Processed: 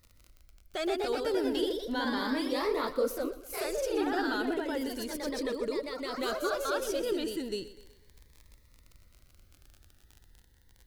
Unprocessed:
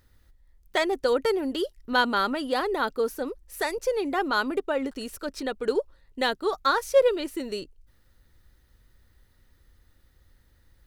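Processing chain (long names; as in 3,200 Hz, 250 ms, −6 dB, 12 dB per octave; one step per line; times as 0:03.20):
brickwall limiter −20.5 dBFS, peak gain reduction 11 dB
delay with pitch and tempo change per echo 164 ms, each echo +1 semitone, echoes 3
surface crackle 33 per second −37 dBFS
on a send: feedback echo with a high-pass in the loop 123 ms, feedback 50%, high-pass 170 Hz, level −15 dB
on the sum: phaser whose notches keep moving one way rising 0.34 Hz
level −2.5 dB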